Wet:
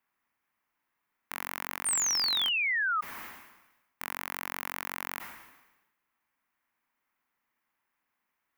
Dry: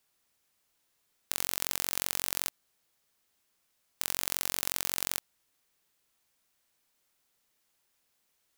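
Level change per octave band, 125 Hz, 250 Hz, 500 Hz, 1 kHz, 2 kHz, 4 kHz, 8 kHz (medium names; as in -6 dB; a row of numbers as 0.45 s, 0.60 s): -4.0 dB, 0.0 dB, -3.5 dB, +8.0 dB, +10.0 dB, +6.5 dB, +2.0 dB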